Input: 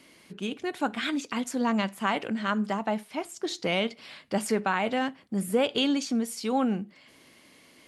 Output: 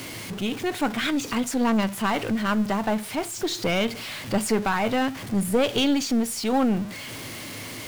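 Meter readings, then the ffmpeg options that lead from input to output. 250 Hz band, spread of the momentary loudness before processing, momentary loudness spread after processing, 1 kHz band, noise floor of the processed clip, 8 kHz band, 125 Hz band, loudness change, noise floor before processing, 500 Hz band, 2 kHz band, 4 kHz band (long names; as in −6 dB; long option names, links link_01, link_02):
+5.0 dB, 8 LU, 11 LU, +3.0 dB, −37 dBFS, +7.5 dB, +6.5 dB, +3.5 dB, −57 dBFS, +3.5 dB, +3.5 dB, +4.0 dB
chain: -af "aeval=exprs='val(0)+0.5*0.0178*sgn(val(0))':channel_layout=same,equalizer=frequency=110:width_type=o:width=0.46:gain=15,aeval=exprs='(tanh(7.08*val(0)+0.45)-tanh(0.45))/7.08':channel_layout=same,volume=4.5dB"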